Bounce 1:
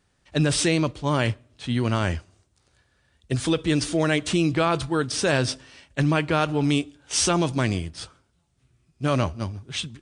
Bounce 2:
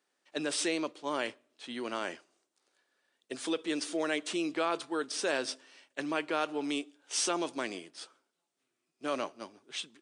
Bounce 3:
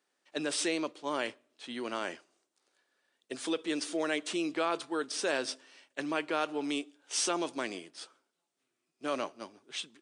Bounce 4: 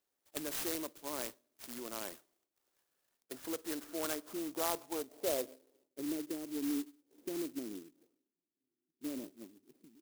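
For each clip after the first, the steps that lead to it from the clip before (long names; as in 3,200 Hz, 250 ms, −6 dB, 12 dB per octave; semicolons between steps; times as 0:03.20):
high-pass filter 290 Hz 24 dB per octave; level −8.5 dB
no processing that can be heard
low-pass filter sweep 4,300 Hz → 300 Hz, 0:02.51–0:06.35; converter with an unsteady clock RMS 0.14 ms; level −7.5 dB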